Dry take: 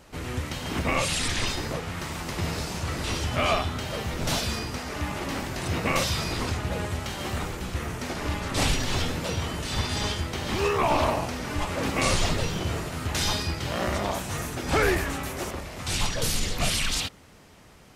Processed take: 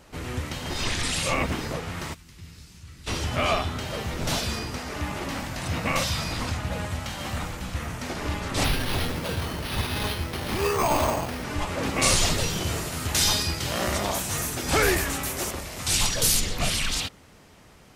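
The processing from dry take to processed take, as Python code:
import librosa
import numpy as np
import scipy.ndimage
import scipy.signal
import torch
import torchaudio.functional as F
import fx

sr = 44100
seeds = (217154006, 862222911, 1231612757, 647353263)

y = fx.tone_stack(x, sr, knobs='6-0-2', at=(2.13, 3.06), fade=0.02)
y = fx.peak_eq(y, sr, hz=390.0, db=-12.0, octaves=0.3, at=(5.29, 8.06))
y = fx.resample_bad(y, sr, factor=6, down='none', up='hold', at=(8.64, 11.44))
y = fx.high_shelf(y, sr, hz=4400.0, db=11.0, at=(12.02, 16.41))
y = fx.edit(y, sr, fx.reverse_span(start_s=0.7, length_s=0.91), tone=tone)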